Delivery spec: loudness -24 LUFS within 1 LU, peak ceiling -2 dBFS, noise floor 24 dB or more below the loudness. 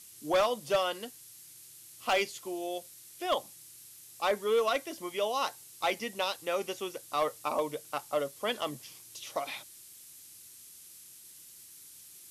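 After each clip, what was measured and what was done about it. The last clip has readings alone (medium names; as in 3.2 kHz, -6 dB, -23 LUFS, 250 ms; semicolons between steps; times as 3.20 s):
clipped samples 0.3%; clipping level -21.0 dBFS; noise floor -53 dBFS; noise floor target -57 dBFS; loudness -32.5 LUFS; peak level -21.0 dBFS; loudness target -24.0 LUFS
-> clip repair -21 dBFS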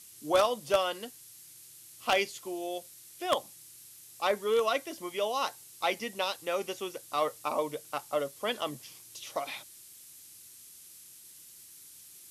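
clipped samples 0.0%; noise floor -53 dBFS; noise floor target -56 dBFS
-> noise reduction 6 dB, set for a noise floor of -53 dBFS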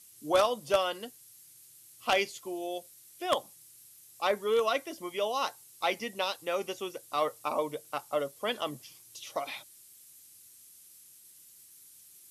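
noise floor -56 dBFS; loudness -32.0 LUFS; peak level -12.0 dBFS; loudness target -24.0 LUFS
-> trim +8 dB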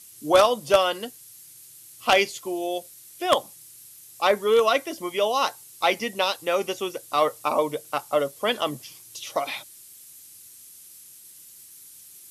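loudness -24.0 LUFS; peak level -4.0 dBFS; noise floor -48 dBFS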